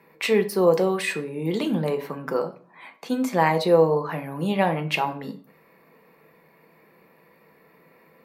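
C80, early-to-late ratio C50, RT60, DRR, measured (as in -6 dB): 18.5 dB, 14.0 dB, 0.45 s, 6.0 dB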